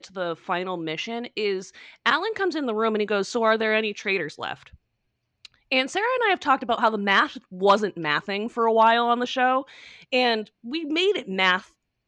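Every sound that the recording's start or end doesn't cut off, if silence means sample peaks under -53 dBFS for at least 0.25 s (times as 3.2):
5.45–11.72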